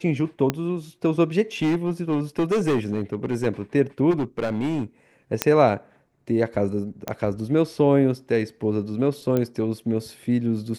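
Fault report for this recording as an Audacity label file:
0.500000	0.500000	pop -8 dBFS
1.620000	3.470000	clipped -17.5 dBFS
4.100000	4.830000	clipped -20.5 dBFS
5.420000	5.420000	pop -2 dBFS
7.080000	7.080000	pop -12 dBFS
9.370000	9.370000	pop -12 dBFS

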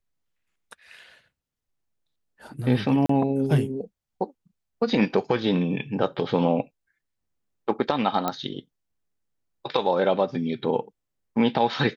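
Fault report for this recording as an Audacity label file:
3.060000	3.090000	dropout 34 ms
8.280000	8.280000	pop -11 dBFS

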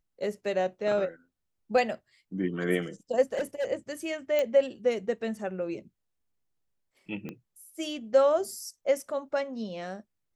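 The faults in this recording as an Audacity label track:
3.330000	3.720000	clipped -25.5 dBFS
4.390000	4.390000	pop -15 dBFS
7.290000	7.290000	pop -25 dBFS

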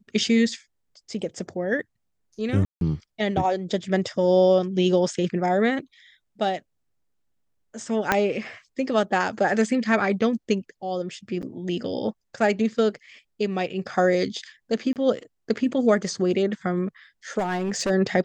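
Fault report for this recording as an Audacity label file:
2.650000	2.810000	dropout 162 ms
8.120000	8.120000	pop -5 dBFS
11.420000	11.430000	dropout 8.1 ms
14.930000	14.960000	dropout 28 ms
17.380000	17.910000	clipped -21 dBFS

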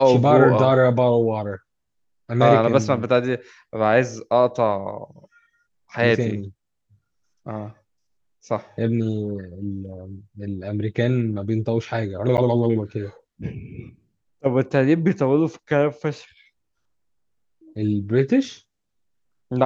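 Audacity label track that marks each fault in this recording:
12.370000	12.380000	dropout 9.1 ms

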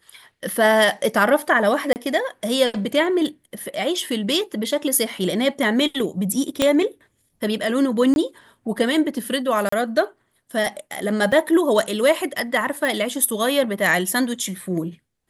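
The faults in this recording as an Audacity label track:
1.930000	1.960000	dropout 29 ms
6.620000	6.620000	pop -4 dBFS
8.140000	8.160000	dropout 21 ms
9.690000	9.720000	dropout 34 ms
11.320000	11.320000	dropout 3.7 ms
12.850000	12.850000	pop

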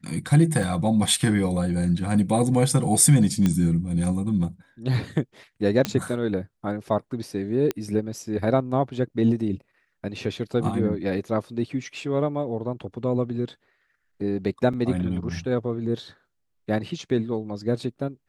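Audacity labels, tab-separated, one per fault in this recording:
0.630000	0.630000	dropout 3.2 ms
3.460000	3.460000	pop -10 dBFS
5.850000	5.850000	pop -9 dBFS
7.710000	7.710000	pop -12 dBFS
14.730000	14.730000	dropout 5 ms

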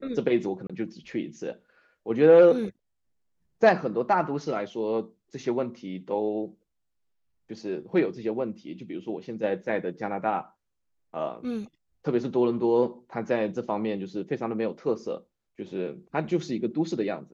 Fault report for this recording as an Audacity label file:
0.670000	0.700000	dropout 26 ms

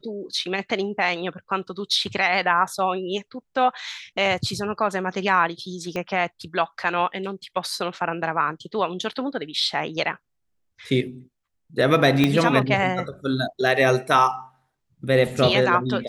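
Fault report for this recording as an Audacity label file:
5.960000	5.960000	pop -16 dBFS
12.240000	12.240000	pop -6 dBFS

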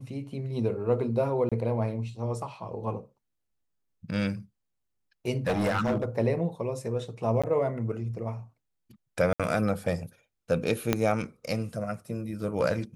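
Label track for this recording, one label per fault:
1.490000	1.520000	dropout 26 ms
5.470000	6.050000	clipped -22 dBFS
7.420000	7.440000	dropout 16 ms
9.330000	9.400000	dropout 66 ms
10.930000	10.930000	pop -8 dBFS

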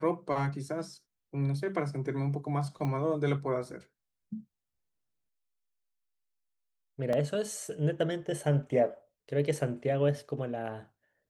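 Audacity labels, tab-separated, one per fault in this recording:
2.850000	2.850000	pop -23 dBFS
7.130000	7.130000	dropout 2.9 ms

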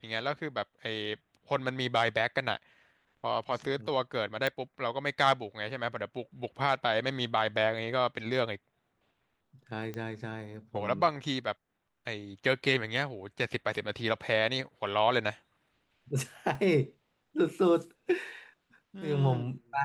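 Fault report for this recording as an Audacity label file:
4.470000	4.470000	pop
9.940000	9.940000	pop -25 dBFS
16.550000	16.550000	dropout 3.2 ms

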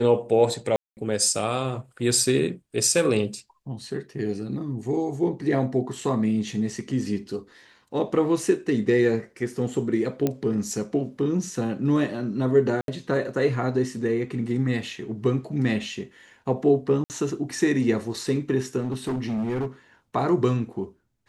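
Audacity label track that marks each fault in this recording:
0.760000	0.970000	dropout 209 ms
10.270000	10.270000	pop -11 dBFS
12.810000	12.880000	dropout 72 ms
17.040000	17.100000	dropout 59 ms
18.800000	19.670000	clipped -23.5 dBFS

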